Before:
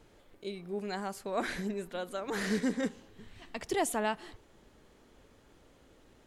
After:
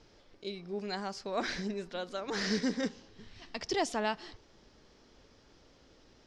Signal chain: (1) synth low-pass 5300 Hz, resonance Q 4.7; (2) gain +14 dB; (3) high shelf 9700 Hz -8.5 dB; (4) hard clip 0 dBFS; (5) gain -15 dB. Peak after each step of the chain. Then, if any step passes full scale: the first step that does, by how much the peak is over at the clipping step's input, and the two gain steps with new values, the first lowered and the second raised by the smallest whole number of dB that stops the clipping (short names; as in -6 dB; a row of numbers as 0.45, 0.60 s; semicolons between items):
-17.5, -3.5, -3.5, -3.5, -18.5 dBFS; no overload